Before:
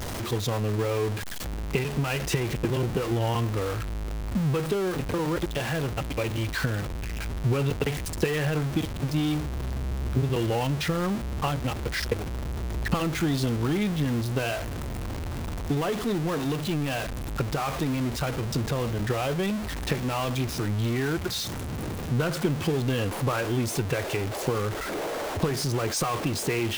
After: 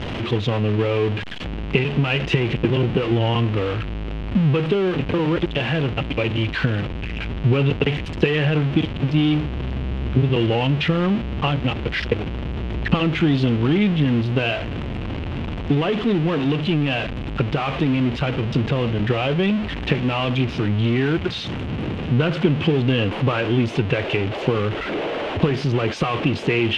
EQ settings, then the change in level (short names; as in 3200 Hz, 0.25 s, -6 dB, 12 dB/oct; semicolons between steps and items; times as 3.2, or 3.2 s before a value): synth low-pass 2900 Hz, resonance Q 3.1; bell 220 Hz +7.5 dB 2.9 oct; +1.0 dB